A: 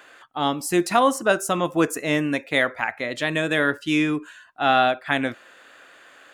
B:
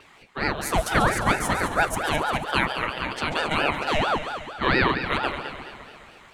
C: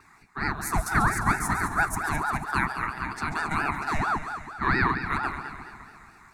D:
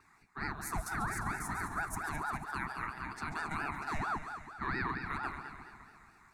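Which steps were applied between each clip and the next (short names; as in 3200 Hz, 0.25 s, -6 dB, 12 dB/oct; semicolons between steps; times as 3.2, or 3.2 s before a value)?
multi-head echo 70 ms, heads second and third, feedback 60%, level -10.5 dB; vibrato 0.41 Hz 8.8 cents; ring modulator with a swept carrier 730 Hz, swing 60%, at 4.4 Hz
fixed phaser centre 1300 Hz, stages 4
limiter -17 dBFS, peak gain reduction 8 dB; gain -9 dB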